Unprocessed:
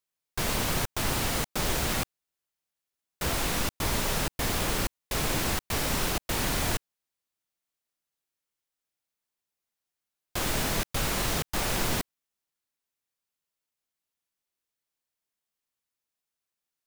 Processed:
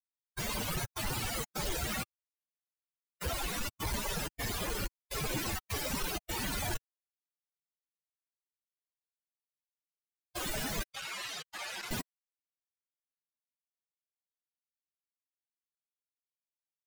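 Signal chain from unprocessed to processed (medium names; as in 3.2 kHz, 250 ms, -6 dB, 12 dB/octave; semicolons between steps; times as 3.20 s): expander on every frequency bin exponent 3; waveshaping leveller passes 2; 10.90–11.91 s: band-pass filter 2.7 kHz, Q 0.62; trim -4 dB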